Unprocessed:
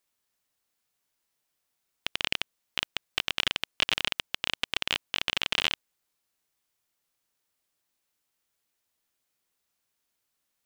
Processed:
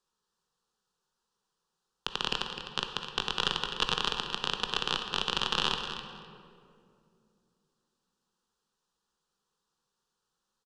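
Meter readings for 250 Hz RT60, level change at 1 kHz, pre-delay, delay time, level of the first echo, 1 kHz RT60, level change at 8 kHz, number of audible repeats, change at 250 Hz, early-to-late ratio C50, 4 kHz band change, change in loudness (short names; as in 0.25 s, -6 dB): 3.5 s, +5.5 dB, 16 ms, 0.255 s, -10.5 dB, 2.1 s, -2.0 dB, 2, +3.5 dB, 5.0 dB, -1.0 dB, -1.5 dB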